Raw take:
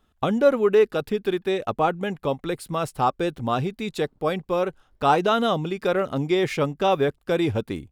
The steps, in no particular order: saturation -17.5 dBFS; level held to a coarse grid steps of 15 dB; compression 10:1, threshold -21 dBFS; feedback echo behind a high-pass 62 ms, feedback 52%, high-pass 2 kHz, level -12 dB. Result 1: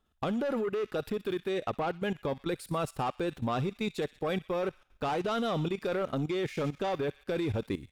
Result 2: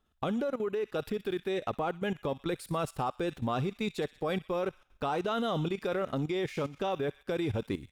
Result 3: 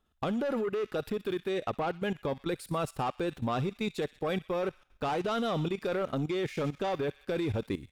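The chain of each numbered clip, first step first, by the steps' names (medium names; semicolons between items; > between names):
saturation > compression > feedback echo behind a high-pass > level held to a coarse grid; compression > feedback echo behind a high-pass > level held to a coarse grid > saturation; saturation > feedback echo behind a high-pass > compression > level held to a coarse grid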